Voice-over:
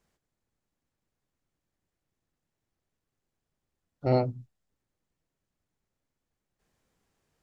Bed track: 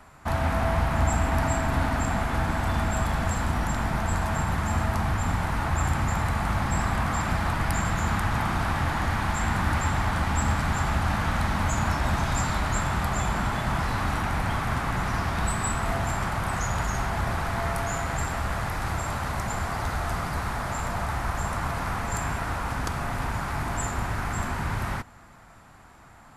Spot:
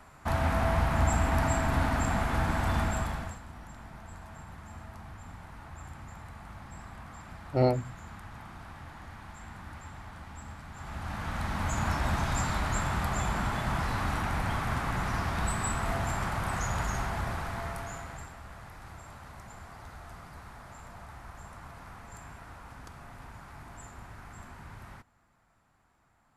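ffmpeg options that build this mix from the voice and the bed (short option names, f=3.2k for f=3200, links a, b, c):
-filter_complex "[0:a]adelay=3500,volume=0dB[a];[1:a]volume=13.5dB,afade=t=out:st=2.8:d=0.6:silence=0.133352,afade=t=in:st=10.73:d=1.2:silence=0.158489,afade=t=out:st=16.89:d=1.46:silence=0.199526[b];[a][b]amix=inputs=2:normalize=0"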